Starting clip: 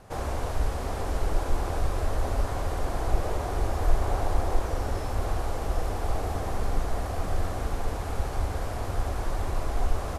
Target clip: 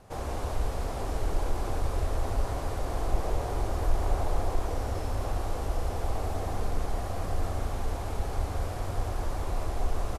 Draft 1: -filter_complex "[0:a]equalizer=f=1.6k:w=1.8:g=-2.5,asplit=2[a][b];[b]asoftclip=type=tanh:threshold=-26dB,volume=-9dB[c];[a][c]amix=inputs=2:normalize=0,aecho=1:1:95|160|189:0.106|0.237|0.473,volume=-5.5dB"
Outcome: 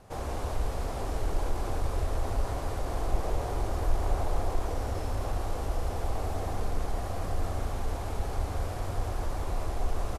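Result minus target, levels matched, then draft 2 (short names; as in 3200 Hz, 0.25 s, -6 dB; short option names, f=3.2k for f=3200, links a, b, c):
soft clip: distortion +8 dB
-filter_complex "[0:a]equalizer=f=1.6k:w=1.8:g=-2.5,asplit=2[a][b];[b]asoftclip=type=tanh:threshold=-16.5dB,volume=-9dB[c];[a][c]amix=inputs=2:normalize=0,aecho=1:1:95|160|189:0.106|0.237|0.473,volume=-5.5dB"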